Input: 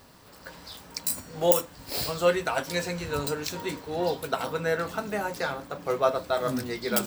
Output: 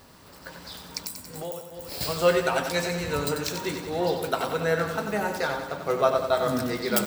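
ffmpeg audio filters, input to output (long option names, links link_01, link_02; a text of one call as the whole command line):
ffmpeg -i in.wav -filter_complex "[0:a]asplit=2[link_01][link_02];[link_02]aecho=0:1:288:0.158[link_03];[link_01][link_03]amix=inputs=2:normalize=0,asettb=1/sr,asplit=3[link_04][link_05][link_06];[link_04]atrim=end=1.044[link_07];[link_05]atrim=start=1.04:end=2.01,asetpts=PTS-STARTPTS,afade=type=in:duration=0.004:curve=qsin,afade=type=out:start_time=0.966:duration=0.004:curve=qsin,acompressor=threshold=-36dB:ratio=6[link_08];[link_06]atrim=start=2.006[link_09];[link_07][link_08]acrossfade=duration=0.004:curve1=hsin:curve2=qsin[link_10];[link_10][link_09]acrossfade=duration=0.004:curve1=qsin:curve2=hsin,asplit=2[link_11][link_12];[link_12]aecho=0:1:92|184|276|368|460|552|644:0.422|0.232|0.128|0.0702|0.0386|0.0212|0.0117[link_13];[link_11][link_13]amix=inputs=2:normalize=0,volume=1.5dB" out.wav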